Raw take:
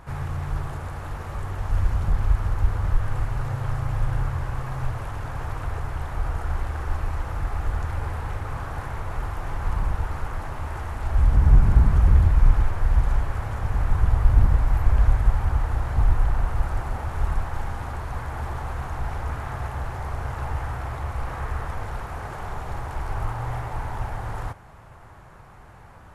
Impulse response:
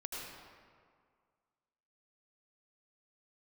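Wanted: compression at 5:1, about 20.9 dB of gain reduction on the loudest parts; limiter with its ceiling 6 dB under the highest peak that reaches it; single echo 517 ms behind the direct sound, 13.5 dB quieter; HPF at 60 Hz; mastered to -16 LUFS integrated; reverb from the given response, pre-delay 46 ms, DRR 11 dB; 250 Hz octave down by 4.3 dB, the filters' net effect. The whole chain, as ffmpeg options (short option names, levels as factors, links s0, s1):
-filter_complex "[0:a]highpass=60,equalizer=f=250:t=o:g=-8,acompressor=threshold=0.0112:ratio=5,alimiter=level_in=3.16:limit=0.0631:level=0:latency=1,volume=0.316,aecho=1:1:517:0.211,asplit=2[s0][s1];[1:a]atrim=start_sample=2205,adelay=46[s2];[s1][s2]afir=irnorm=-1:irlink=0,volume=0.266[s3];[s0][s3]amix=inputs=2:normalize=0,volume=23.7"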